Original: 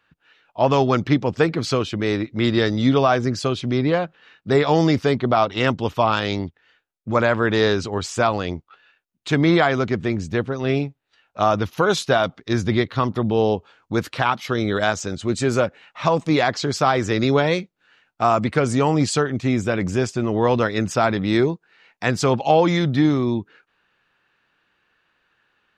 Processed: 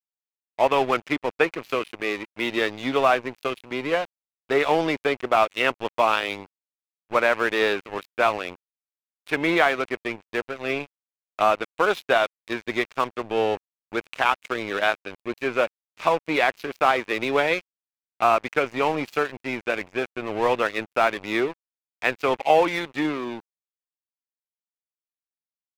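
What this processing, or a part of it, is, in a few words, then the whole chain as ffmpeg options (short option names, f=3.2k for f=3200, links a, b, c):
pocket radio on a weak battery: -af "highpass=390,lowpass=3k,aeval=exprs='sgn(val(0))*max(abs(val(0))-0.0237,0)':c=same,equalizer=f=2.5k:t=o:w=0.54:g=7.5"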